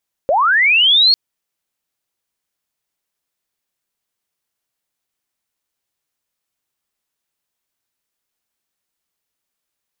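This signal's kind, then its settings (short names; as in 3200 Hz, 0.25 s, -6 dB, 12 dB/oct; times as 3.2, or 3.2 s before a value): chirp linear 510 Hz -> 4400 Hz -11 dBFS -> -7.5 dBFS 0.85 s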